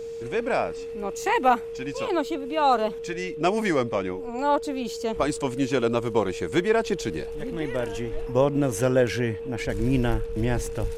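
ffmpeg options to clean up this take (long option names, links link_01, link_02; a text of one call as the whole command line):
ffmpeg -i in.wav -af "bandreject=frequency=460:width=30" out.wav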